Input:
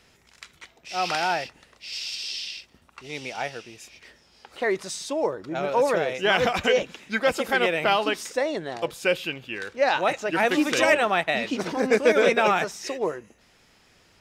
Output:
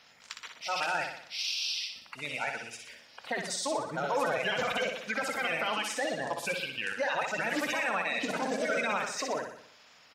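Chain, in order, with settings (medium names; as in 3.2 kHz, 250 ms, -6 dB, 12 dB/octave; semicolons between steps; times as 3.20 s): coarse spectral quantiser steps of 30 dB; high-pass 280 Hz 6 dB/octave; peaking EQ 370 Hz -12.5 dB 0.41 oct; in parallel at +1 dB: compression 5:1, threshold -32 dBFS, peak gain reduction 14.5 dB; on the sum: peak limiter -16.5 dBFS, peak gain reduction 11.5 dB; tempo 1.4×; on a send: flutter echo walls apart 10.4 m, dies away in 0.64 s; on the sum: trim -5.5 dB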